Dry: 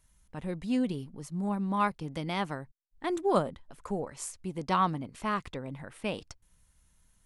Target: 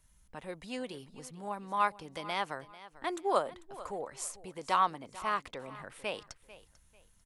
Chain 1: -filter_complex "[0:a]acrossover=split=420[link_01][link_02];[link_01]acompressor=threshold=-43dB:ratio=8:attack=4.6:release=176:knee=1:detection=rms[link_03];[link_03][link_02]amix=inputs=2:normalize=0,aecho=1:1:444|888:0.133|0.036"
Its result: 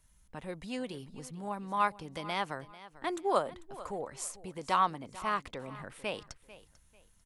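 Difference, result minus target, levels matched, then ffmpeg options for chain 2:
downward compressor: peak gain reduction −5.5 dB
-filter_complex "[0:a]acrossover=split=420[link_01][link_02];[link_01]acompressor=threshold=-49.5dB:ratio=8:attack=4.6:release=176:knee=1:detection=rms[link_03];[link_03][link_02]amix=inputs=2:normalize=0,aecho=1:1:444|888:0.133|0.036"

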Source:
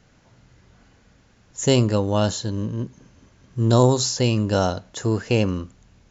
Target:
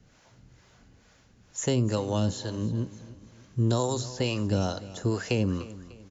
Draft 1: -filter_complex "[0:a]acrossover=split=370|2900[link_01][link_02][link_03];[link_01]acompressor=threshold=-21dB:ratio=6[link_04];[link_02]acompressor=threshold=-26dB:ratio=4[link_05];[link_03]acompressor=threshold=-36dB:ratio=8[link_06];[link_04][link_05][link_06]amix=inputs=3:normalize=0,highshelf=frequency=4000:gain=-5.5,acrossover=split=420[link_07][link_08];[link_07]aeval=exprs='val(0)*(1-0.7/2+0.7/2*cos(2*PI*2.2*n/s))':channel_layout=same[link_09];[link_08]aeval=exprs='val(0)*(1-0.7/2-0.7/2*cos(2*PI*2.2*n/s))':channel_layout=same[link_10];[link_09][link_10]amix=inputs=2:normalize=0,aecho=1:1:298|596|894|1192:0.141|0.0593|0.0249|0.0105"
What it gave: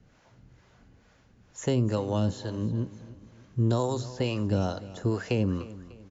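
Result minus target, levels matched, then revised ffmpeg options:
8,000 Hz band −7.5 dB
-filter_complex "[0:a]acrossover=split=370|2900[link_01][link_02][link_03];[link_01]acompressor=threshold=-21dB:ratio=6[link_04];[link_02]acompressor=threshold=-26dB:ratio=4[link_05];[link_03]acompressor=threshold=-36dB:ratio=8[link_06];[link_04][link_05][link_06]amix=inputs=3:normalize=0,highshelf=frequency=4000:gain=5,acrossover=split=420[link_07][link_08];[link_07]aeval=exprs='val(0)*(1-0.7/2+0.7/2*cos(2*PI*2.2*n/s))':channel_layout=same[link_09];[link_08]aeval=exprs='val(0)*(1-0.7/2-0.7/2*cos(2*PI*2.2*n/s))':channel_layout=same[link_10];[link_09][link_10]amix=inputs=2:normalize=0,aecho=1:1:298|596|894|1192:0.141|0.0593|0.0249|0.0105"

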